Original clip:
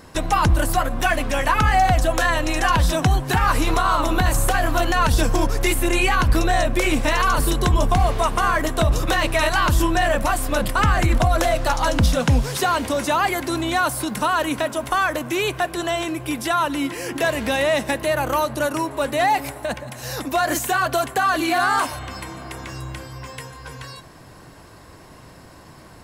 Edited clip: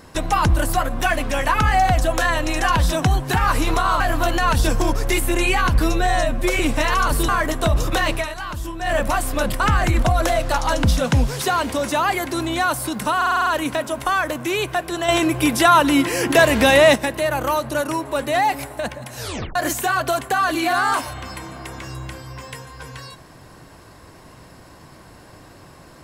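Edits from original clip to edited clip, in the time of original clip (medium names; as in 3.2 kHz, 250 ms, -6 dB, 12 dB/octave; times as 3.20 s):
4.00–4.54 s: delete
6.34–6.87 s: stretch 1.5×
7.56–8.44 s: delete
9.30–10.09 s: dip -11 dB, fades 0.13 s
14.32 s: stutter 0.05 s, 7 plays
15.94–17.81 s: gain +7.5 dB
20.05 s: tape stop 0.36 s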